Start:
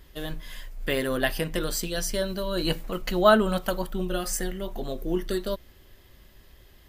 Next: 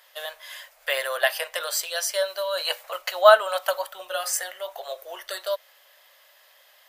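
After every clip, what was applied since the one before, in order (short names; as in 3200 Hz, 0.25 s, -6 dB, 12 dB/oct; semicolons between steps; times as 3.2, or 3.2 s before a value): elliptic high-pass 570 Hz, stop band 50 dB; gain +5 dB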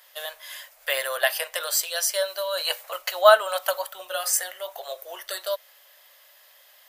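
high shelf 6200 Hz +7 dB; gain -1 dB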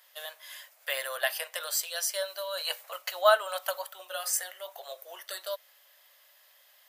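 HPF 410 Hz 6 dB/oct; gain -6 dB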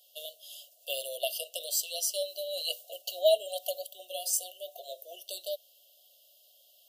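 FFT band-reject 750–2700 Hz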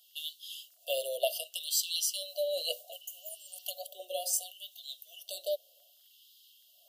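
crackle 11/s -57 dBFS; LFO high-pass sine 0.67 Hz 400–3600 Hz; spectral repair 3.04–3.59, 2400–6000 Hz both; gain -1.5 dB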